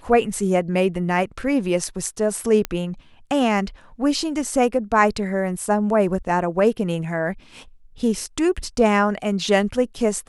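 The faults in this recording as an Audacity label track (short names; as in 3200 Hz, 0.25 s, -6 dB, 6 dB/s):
2.650000	2.650000	pop -8 dBFS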